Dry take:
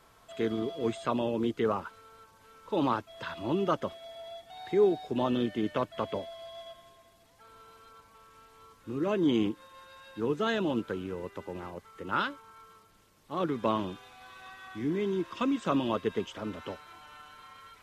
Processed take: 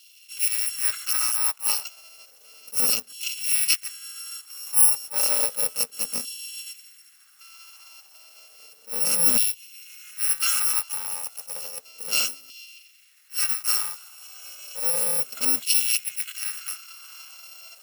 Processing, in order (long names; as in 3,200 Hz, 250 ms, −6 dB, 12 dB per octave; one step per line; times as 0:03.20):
samples in bit-reversed order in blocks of 128 samples
auto-filter high-pass saw down 0.32 Hz 280–3,300 Hz
level that may rise only so fast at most 320 dB per second
level +6.5 dB